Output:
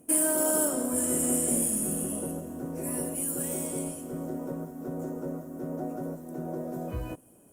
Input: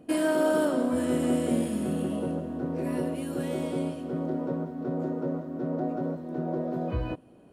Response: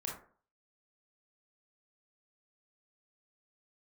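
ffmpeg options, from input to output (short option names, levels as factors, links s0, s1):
-af "aexciter=amount=15.6:drive=3.3:freq=6200,volume=0.596" -ar 48000 -c:a libopus -b:a 32k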